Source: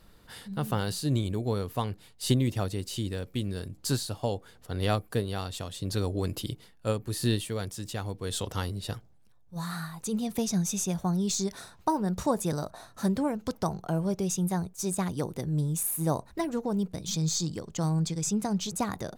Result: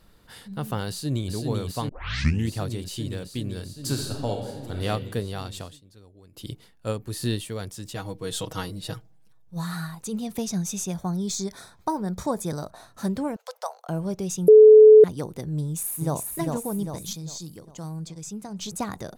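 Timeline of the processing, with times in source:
0.89–1.32 s: echo throw 390 ms, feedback 85%, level -3.5 dB
1.89 s: tape start 0.62 s
3.68–4.86 s: reverb throw, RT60 1.3 s, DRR 2.5 dB
5.62–6.51 s: dip -22.5 dB, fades 0.19 s
7.95–9.95 s: comb 6.3 ms, depth 78%
10.92–12.59 s: Butterworth band-stop 2.8 kHz, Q 6.1
13.36–13.89 s: steep high-pass 500 Hz 72 dB/octave
14.48–15.04 s: bleep 431 Hz -6.5 dBFS
15.61–16.18 s: echo throw 400 ms, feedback 55%, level -3.5 dB
17.13–18.59 s: gain -7.5 dB

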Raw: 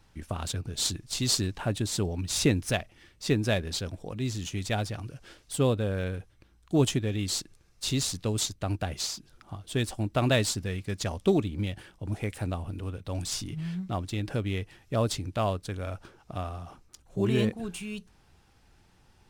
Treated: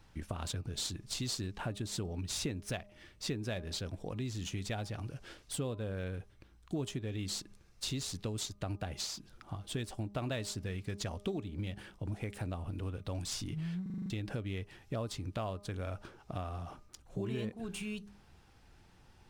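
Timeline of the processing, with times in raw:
13.82 s: stutter in place 0.04 s, 7 plays
whole clip: peaking EQ 11 kHz -3.5 dB 1.8 oct; de-hum 203.2 Hz, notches 6; compression 4:1, threshold -36 dBFS

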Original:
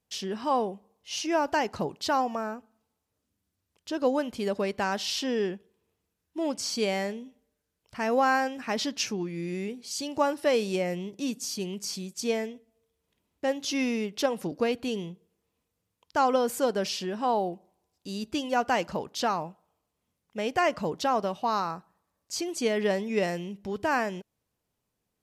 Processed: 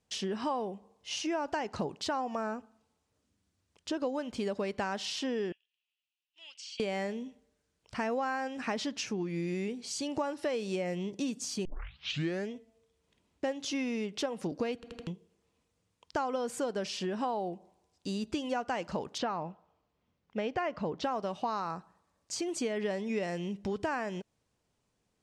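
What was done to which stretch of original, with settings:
5.52–6.80 s: ladder band-pass 3.1 kHz, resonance 70%
11.65 s: tape start 0.85 s
14.75 s: stutter in place 0.08 s, 4 plays
19.18–21.04 s: distance through air 150 m
whole clip: compression, threshold -34 dBFS; low-pass 9.1 kHz 24 dB/octave; dynamic bell 5 kHz, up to -5 dB, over -50 dBFS, Q 1.1; trim +3.5 dB

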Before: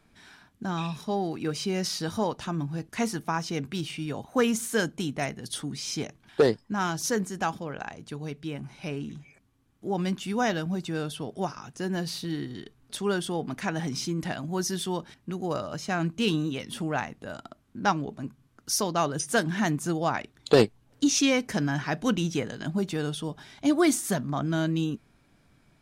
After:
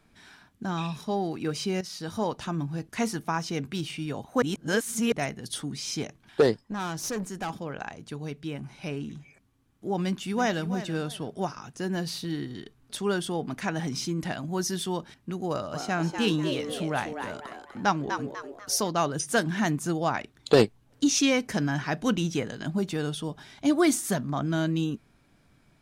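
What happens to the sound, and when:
1.81–2.31 s: fade in, from -12.5 dB
4.42–5.12 s: reverse
6.61–7.50 s: valve stage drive 27 dB, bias 0.35
10.03–10.69 s: echo throw 330 ms, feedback 25%, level -12.5 dB
15.49–18.90 s: frequency-shifting echo 247 ms, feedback 37%, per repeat +140 Hz, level -7 dB

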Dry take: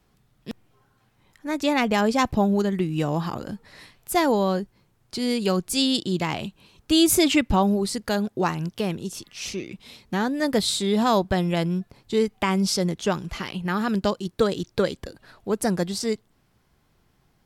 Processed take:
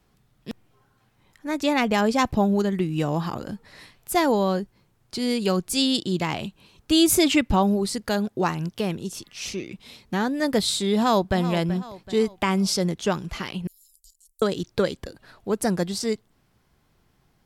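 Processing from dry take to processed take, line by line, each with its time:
10.96–11.39 s: echo throw 380 ms, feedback 45%, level -13 dB
13.67–14.42 s: inverse Chebyshev band-stop 140–1600 Hz, stop band 80 dB

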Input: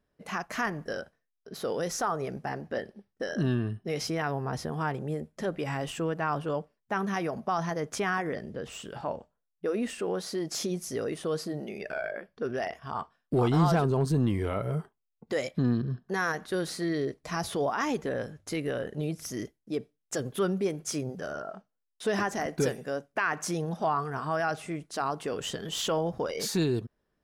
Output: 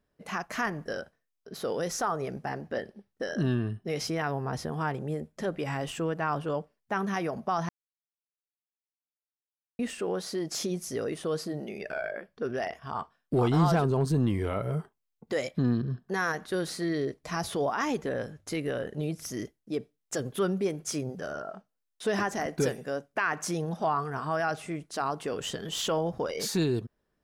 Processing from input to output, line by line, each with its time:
7.69–9.79 s: mute

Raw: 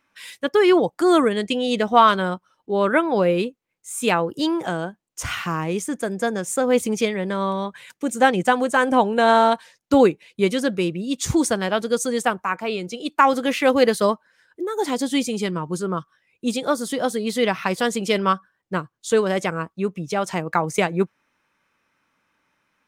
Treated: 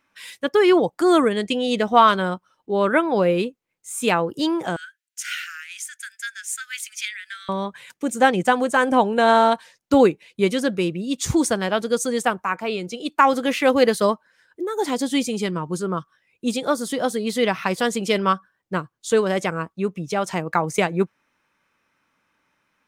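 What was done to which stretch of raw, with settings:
4.76–7.49 s: steep high-pass 1.4 kHz 96 dB/octave

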